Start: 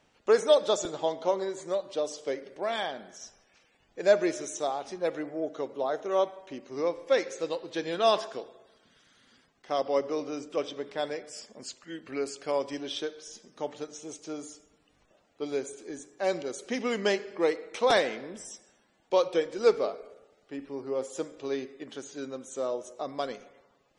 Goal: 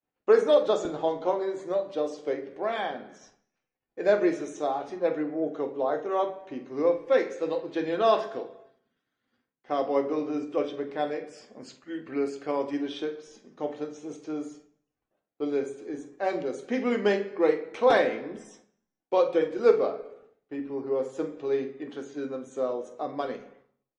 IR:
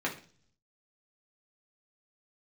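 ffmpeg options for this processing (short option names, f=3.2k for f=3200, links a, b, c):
-filter_complex "[0:a]lowpass=f=1.5k:p=1,agate=range=-33dB:threshold=-54dB:ratio=3:detection=peak,asplit=2[a][b];[b]adelay=46,volume=-12.5dB[c];[a][c]amix=inputs=2:normalize=0,asplit=2[d][e];[1:a]atrim=start_sample=2205,highshelf=f=5.7k:g=9[f];[e][f]afir=irnorm=-1:irlink=0,volume=-7dB[g];[d][g]amix=inputs=2:normalize=0,volume=-1.5dB"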